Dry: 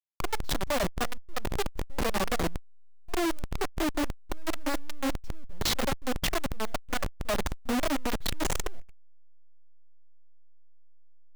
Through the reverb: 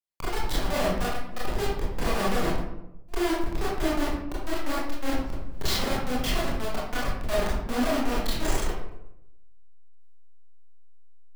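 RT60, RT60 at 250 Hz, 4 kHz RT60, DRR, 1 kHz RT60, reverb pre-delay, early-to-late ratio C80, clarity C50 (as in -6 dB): 0.85 s, 1.0 s, 0.45 s, -7.5 dB, 0.80 s, 23 ms, 4.0 dB, 0.0 dB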